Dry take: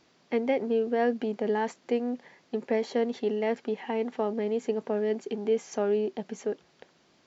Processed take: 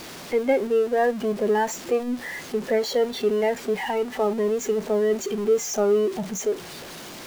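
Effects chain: zero-crossing step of -29 dBFS; spectral noise reduction 9 dB; gain +4.5 dB

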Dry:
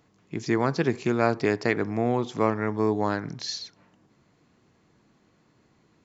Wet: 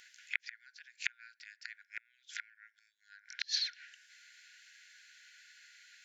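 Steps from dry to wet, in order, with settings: flipped gate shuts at -19 dBFS, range -35 dB; treble ducked by the level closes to 2600 Hz, closed at -37.5 dBFS; brick-wall FIR high-pass 1400 Hz; gain +14 dB

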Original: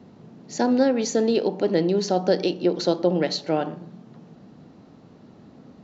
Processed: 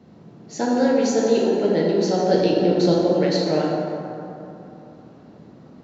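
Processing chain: 2.34–2.94 low shelf 210 Hz +11 dB; plate-style reverb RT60 2.9 s, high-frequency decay 0.45×, DRR -4 dB; gain -3 dB

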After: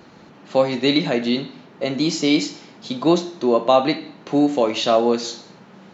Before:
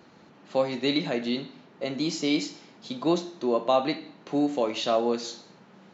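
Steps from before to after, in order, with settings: low shelf 62 Hz +8 dB; gain +7.5 dB

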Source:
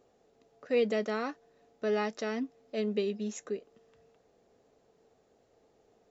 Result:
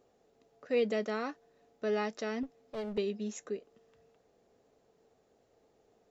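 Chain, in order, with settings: 2.43–2.98 one-sided clip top -40.5 dBFS; gain -2 dB

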